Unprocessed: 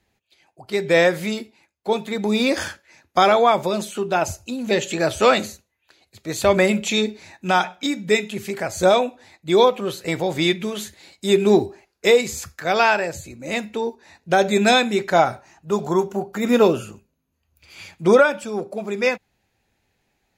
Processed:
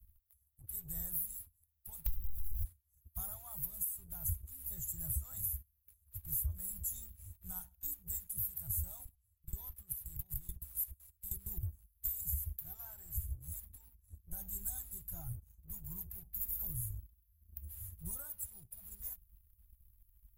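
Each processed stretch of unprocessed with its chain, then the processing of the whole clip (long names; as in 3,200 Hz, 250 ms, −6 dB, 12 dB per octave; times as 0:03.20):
0:02.06–0:02.64: linear delta modulator 16 kbit/s, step −21 dBFS + high-shelf EQ 2,400 Hz −6 dB + leveller curve on the samples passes 5
0:09.05–0:11.63: output level in coarse steps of 16 dB + double-tracking delay 15 ms −12 dB
0:12.25–0:16.69: parametric band 200 Hz +6.5 dB 2.1 octaves + flanger 1.6 Hz, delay 1.2 ms, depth 3 ms, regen +27%
whole clip: inverse Chebyshev band-stop filter 210–5,100 Hz, stop band 60 dB; downward compressor 6 to 1, threshold −53 dBFS; leveller curve on the samples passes 1; level +15.5 dB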